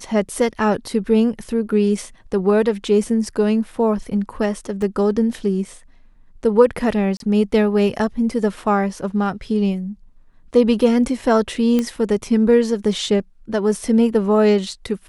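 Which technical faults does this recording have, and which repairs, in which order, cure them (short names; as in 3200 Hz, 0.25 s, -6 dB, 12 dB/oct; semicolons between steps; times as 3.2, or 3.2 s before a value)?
4.82 gap 2.2 ms
7.17–7.2 gap 32 ms
11.79 pop -8 dBFS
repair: de-click; interpolate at 4.82, 2.2 ms; interpolate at 7.17, 32 ms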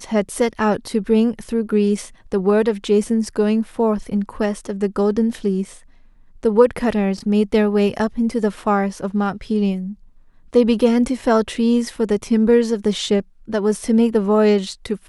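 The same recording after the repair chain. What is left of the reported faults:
none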